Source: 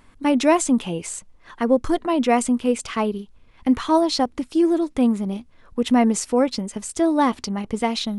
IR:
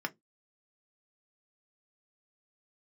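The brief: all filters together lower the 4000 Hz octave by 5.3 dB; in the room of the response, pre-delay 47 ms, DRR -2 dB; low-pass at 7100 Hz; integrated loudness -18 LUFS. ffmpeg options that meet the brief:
-filter_complex "[0:a]lowpass=7.1k,equalizer=f=4k:t=o:g=-6,asplit=2[a][b];[1:a]atrim=start_sample=2205,adelay=47[c];[b][c]afir=irnorm=-1:irlink=0,volume=-2dB[d];[a][d]amix=inputs=2:normalize=0,volume=-1dB"

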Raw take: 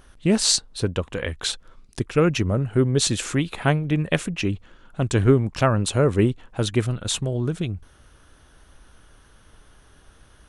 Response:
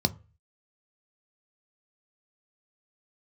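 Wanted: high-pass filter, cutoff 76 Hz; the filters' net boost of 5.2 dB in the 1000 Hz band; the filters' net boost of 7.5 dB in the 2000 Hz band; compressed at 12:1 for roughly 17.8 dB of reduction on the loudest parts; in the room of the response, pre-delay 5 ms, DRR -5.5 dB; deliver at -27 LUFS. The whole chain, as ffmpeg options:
-filter_complex "[0:a]highpass=76,equalizer=f=1k:t=o:g=4,equalizer=f=2k:t=o:g=8.5,acompressor=threshold=-29dB:ratio=12,asplit=2[a][b];[1:a]atrim=start_sample=2205,adelay=5[c];[b][c]afir=irnorm=-1:irlink=0,volume=-3.5dB[d];[a][d]amix=inputs=2:normalize=0,volume=-5dB"

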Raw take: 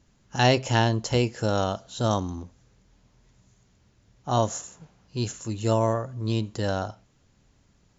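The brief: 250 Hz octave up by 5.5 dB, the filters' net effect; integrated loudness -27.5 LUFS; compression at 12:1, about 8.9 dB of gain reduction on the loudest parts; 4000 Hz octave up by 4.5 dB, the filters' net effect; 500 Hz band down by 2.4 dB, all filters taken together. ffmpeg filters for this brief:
-af "equalizer=f=250:t=o:g=8,equalizer=f=500:t=o:g=-5.5,equalizer=f=4k:t=o:g=6,acompressor=threshold=-23dB:ratio=12,volume=2.5dB"

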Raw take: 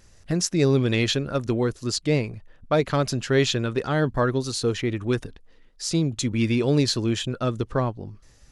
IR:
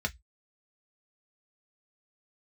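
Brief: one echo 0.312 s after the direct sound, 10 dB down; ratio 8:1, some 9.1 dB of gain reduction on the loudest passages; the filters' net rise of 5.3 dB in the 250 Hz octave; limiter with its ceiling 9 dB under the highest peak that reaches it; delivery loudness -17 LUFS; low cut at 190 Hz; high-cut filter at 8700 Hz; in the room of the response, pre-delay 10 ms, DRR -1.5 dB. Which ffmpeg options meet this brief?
-filter_complex "[0:a]highpass=190,lowpass=8.7k,equalizer=f=250:t=o:g=8,acompressor=threshold=-22dB:ratio=8,alimiter=limit=-19.5dB:level=0:latency=1,aecho=1:1:312:0.316,asplit=2[a][b];[1:a]atrim=start_sample=2205,adelay=10[c];[b][c]afir=irnorm=-1:irlink=0,volume=-4dB[d];[a][d]amix=inputs=2:normalize=0,volume=8.5dB"

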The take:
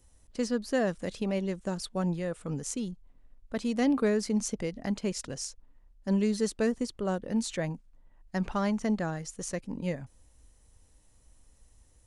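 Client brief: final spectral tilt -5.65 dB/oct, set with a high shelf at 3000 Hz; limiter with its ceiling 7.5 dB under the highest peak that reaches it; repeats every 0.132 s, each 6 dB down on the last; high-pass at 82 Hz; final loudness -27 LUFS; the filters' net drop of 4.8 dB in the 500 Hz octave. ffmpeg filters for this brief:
-af "highpass=82,equalizer=f=500:t=o:g=-5.5,highshelf=f=3k:g=-6,alimiter=level_in=2.5dB:limit=-24dB:level=0:latency=1,volume=-2.5dB,aecho=1:1:132|264|396|528|660|792:0.501|0.251|0.125|0.0626|0.0313|0.0157,volume=8.5dB"

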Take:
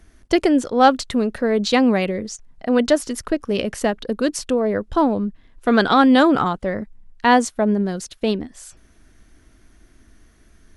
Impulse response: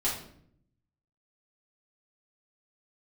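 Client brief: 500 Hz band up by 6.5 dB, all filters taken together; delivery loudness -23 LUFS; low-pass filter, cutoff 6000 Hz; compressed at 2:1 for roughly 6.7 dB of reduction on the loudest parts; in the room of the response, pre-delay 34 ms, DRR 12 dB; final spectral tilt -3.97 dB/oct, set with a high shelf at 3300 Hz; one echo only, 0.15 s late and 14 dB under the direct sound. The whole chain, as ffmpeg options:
-filter_complex "[0:a]lowpass=6k,equalizer=f=500:t=o:g=7.5,highshelf=f=3.3k:g=5.5,acompressor=threshold=-17dB:ratio=2,aecho=1:1:150:0.2,asplit=2[a][b];[1:a]atrim=start_sample=2205,adelay=34[c];[b][c]afir=irnorm=-1:irlink=0,volume=-19.5dB[d];[a][d]amix=inputs=2:normalize=0,volume=-3.5dB"

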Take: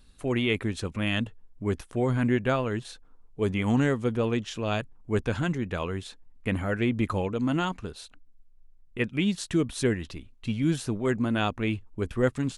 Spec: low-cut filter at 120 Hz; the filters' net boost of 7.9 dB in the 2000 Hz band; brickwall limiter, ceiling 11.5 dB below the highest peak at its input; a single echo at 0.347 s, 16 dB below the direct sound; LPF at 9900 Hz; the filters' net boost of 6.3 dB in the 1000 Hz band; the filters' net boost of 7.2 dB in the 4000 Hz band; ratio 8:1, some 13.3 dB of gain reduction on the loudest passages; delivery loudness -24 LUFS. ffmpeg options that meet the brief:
-af "highpass=120,lowpass=9.9k,equalizer=f=1k:t=o:g=6,equalizer=f=2k:t=o:g=6.5,equalizer=f=4k:t=o:g=6.5,acompressor=threshold=-31dB:ratio=8,alimiter=level_in=3.5dB:limit=-24dB:level=0:latency=1,volume=-3.5dB,aecho=1:1:347:0.158,volume=15.5dB"

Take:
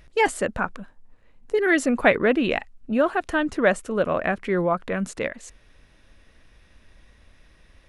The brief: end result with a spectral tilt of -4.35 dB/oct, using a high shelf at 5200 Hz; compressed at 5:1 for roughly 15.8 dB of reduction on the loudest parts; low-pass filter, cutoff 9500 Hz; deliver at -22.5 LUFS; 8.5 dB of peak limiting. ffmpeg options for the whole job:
-af "lowpass=9.5k,highshelf=f=5.2k:g=6,acompressor=threshold=-30dB:ratio=5,volume=14.5dB,alimiter=limit=-12dB:level=0:latency=1"

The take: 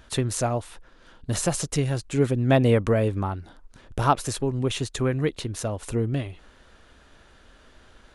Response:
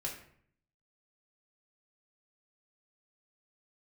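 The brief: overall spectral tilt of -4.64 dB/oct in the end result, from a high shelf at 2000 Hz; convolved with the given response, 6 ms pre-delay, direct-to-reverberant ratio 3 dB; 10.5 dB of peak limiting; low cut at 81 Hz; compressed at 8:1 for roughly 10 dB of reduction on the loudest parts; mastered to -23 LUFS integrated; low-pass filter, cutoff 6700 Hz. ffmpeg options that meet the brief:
-filter_complex "[0:a]highpass=81,lowpass=6.7k,highshelf=f=2k:g=8,acompressor=threshold=-24dB:ratio=8,alimiter=limit=-22.5dB:level=0:latency=1,asplit=2[a][b];[1:a]atrim=start_sample=2205,adelay=6[c];[b][c]afir=irnorm=-1:irlink=0,volume=-4dB[d];[a][d]amix=inputs=2:normalize=0,volume=8dB"

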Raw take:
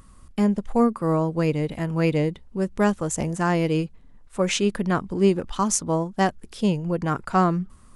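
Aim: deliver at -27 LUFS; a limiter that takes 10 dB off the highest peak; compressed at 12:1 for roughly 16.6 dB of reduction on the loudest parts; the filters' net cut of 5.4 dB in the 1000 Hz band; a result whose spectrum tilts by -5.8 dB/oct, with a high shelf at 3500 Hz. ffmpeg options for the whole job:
-af "equalizer=f=1k:t=o:g=-7,highshelf=f=3.5k:g=-4,acompressor=threshold=-31dB:ratio=12,volume=11.5dB,alimiter=limit=-16.5dB:level=0:latency=1"

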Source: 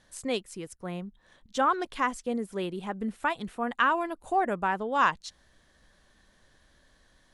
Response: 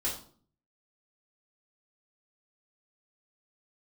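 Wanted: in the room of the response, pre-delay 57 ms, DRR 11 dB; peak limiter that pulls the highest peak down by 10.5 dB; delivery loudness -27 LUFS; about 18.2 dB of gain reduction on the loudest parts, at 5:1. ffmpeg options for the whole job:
-filter_complex "[0:a]acompressor=threshold=-41dB:ratio=5,alimiter=level_in=10.5dB:limit=-24dB:level=0:latency=1,volume=-10.5dB,asplit=2[a][b];[1:a]atrim=start_sample=2205,adelay=57[c];[b][c]afir=irnorm=-1:irlink=0,volume=-16dB[d];[a][d]amix=inputs=2:normalize=0,volume=18.5dB"

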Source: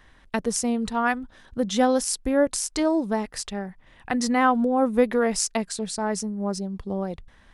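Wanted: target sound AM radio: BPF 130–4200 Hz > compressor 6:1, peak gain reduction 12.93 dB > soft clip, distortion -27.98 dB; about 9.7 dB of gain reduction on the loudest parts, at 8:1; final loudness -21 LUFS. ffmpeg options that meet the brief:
-af "acompressor=threshold=-24dB:ratio=8,highpass=130,lowpass=4.2k,acompressor=threshold=-36dB:ratio=6,asoftclip=threshold=-23.5dB,volume=19.5dB"

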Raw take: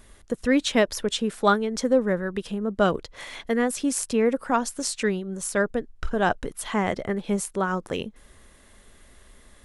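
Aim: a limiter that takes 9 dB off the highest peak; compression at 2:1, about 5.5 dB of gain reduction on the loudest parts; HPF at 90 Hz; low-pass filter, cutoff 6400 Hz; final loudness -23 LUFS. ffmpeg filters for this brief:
-af "highpass=90,lowpass=6.4k,acompressor=threshold=-24dB:ratio=2,volume=8.5dB,alimiter=limit=-12dB:level=0:latency=1"

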